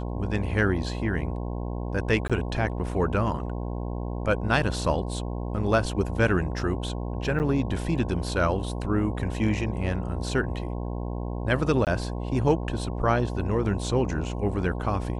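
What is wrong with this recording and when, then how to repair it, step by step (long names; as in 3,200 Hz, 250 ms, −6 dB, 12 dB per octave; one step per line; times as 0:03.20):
mains buzz 60 Hz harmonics 18 −31 dBFS
0:02.28–0:02.30: drop-out 16 ms
0:07.39–0:07.40: drop-out 9 ms
0:11.85–0:11.87: drop-out 18 ms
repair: hum removal 60 Hz, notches 18
repair the gap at 0:02.28, 16 ms
repair the gap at 0:07.39, 9 ms
repair the gap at 0:11.85, 18 ms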